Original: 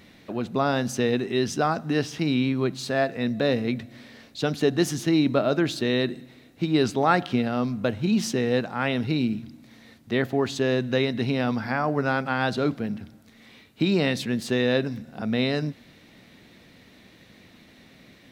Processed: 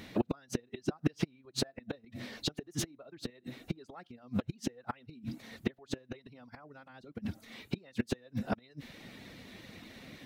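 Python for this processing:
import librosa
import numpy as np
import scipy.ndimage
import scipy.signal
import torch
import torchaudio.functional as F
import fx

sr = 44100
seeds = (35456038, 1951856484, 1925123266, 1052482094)

y = fx.gate_flip(x, sr, shuts_db=-18.0, range_db=-32)
y = fx.stretch_vocoder(y, sr, factor=0.56)
y = fx.dereverb_blind(y, sr, rt60_s=0.59)
y = F.gain(torch.from_numpy(y), 5.0).numpy()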